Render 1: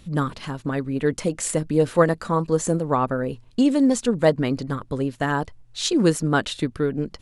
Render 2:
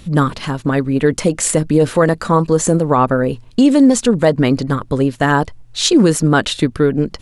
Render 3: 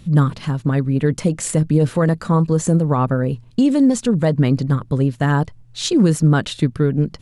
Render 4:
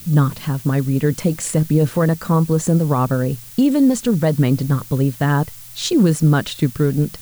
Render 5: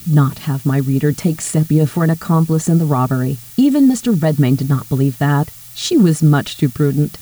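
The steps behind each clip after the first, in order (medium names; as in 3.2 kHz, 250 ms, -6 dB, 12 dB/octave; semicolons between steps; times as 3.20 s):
loudness maximiser +11.5 dB; trim -2 dB
peaking EQ 140 Hz +10.5 dB 1.3 oct; trim -7.5 dB
added noise blue -39 dBFS
comb of notches 520 Hz; trim +3 dB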